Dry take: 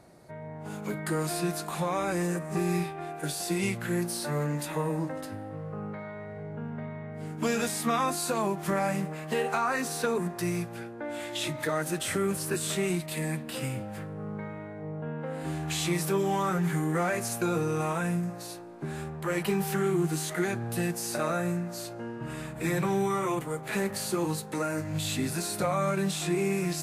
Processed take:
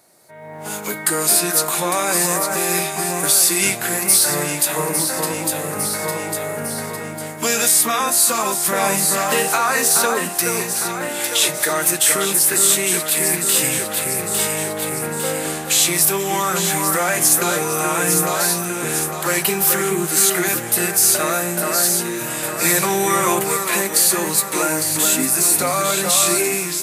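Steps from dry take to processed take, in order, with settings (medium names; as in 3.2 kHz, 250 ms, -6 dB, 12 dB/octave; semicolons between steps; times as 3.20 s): RIAA curve recording; echo whose repeats swap between lows and highs 427 ms, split 2 kHz, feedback 70%, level -4 dB; level rider gain up to 15 dB; 24.97–25.56 s: fifteen-band graphic EQ 100 Hz -6 dB, 250 Hz +6 dB, 4 kHz -7 dB; trim -1 dB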